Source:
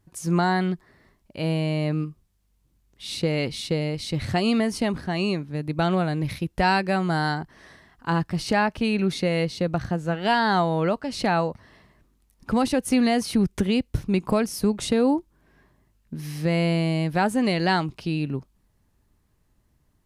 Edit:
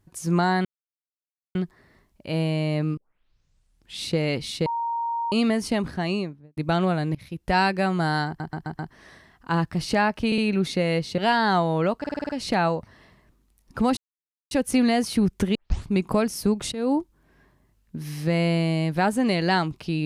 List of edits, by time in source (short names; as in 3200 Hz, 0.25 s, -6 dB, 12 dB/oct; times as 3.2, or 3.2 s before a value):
0.65 insert silence 0.90 s
2.07 tape start 1.04 s
3.76–4.42 bleep 931 Hz -24 dBFS
5.12–5.67 studio fade out
6.25–6.67 fade in, from -23.5 dB
7.37 stutter 0.13 s, 5 plays
8.84 stutter 0.06 s, 3 plays
9.64–10.2 cut
11.01 stutter 0.05 s, 7 plays
12.69 insert silence 0.54 s
13.73 tape start 0.36 s
14.9–15.15 fade in, from -17.5 dB